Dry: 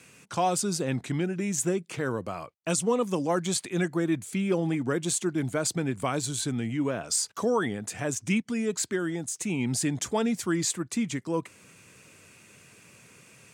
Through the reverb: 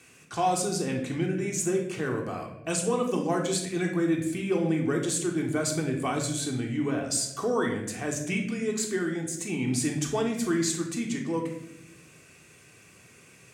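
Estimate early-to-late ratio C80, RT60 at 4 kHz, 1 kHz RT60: 9.0 dB, 0.60 s, 0.75 s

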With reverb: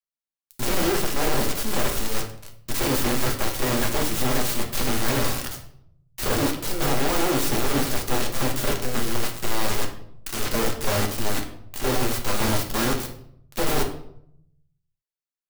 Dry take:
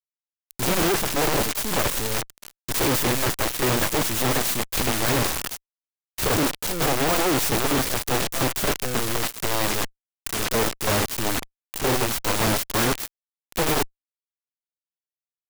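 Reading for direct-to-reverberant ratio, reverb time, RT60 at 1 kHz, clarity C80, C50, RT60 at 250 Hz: 2.0 dB, 0.70 s, 0.65 s, 12.5 dB, 8.5 dB, 0.90 s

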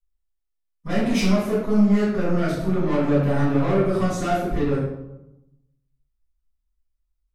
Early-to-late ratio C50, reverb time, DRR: 1.0 dB, 0.90 s, -12.0 dB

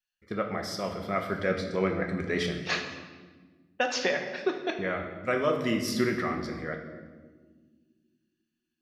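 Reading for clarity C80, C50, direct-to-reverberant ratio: 8.5 dB, 6.5 dB, 3.0 dB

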